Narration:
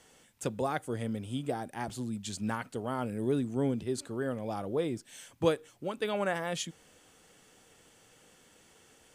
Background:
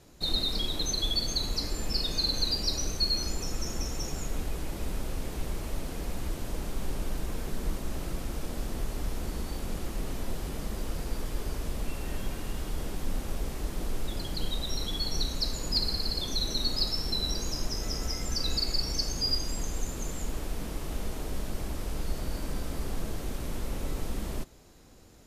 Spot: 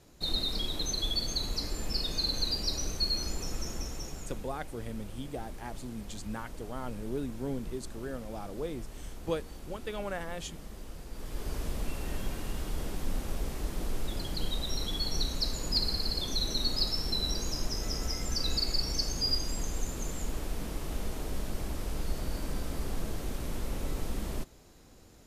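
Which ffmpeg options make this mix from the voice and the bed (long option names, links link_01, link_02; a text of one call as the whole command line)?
ffmpeg -i stem1.wav -i stem2.wav -filter_complex "[0:a]adelay=3850,volume=-5.5dB[link_01];[1:a]volume=7dB,afade=type=out:start_time=3.56:duration=0.93:silence=0.398107,afade=type=in:start_time=11.11:duration=0.46:silence=0.334965[link_02];[link_01][link_02]amix=inputs=2:normalize=0" out.wav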